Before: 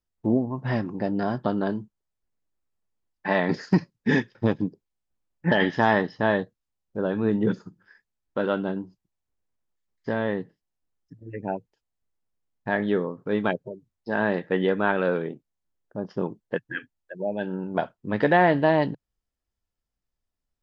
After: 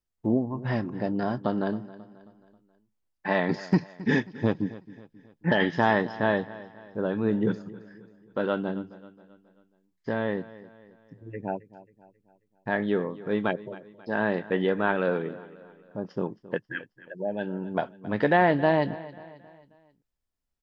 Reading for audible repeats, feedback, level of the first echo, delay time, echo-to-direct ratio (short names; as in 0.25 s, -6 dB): 3, 46%, -18.0 dB, 0.269 s, -17.0 dB